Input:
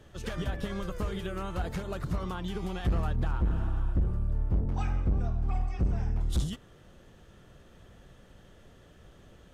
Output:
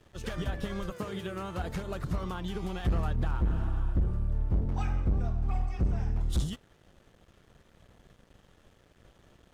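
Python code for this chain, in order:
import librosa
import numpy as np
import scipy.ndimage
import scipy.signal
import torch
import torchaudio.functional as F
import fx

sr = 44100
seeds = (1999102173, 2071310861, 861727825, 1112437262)

y = fx.highpass(x, sr, hz=fx.line((0.9, 130.0), (1.64, 56.0)), slope=24, at=(0.9, 1.64), fade=0.02)
y = np.sign(y) * np.maximum(np.abs(y) - 10.0 ** (-57.0 / 20.0), 0.0)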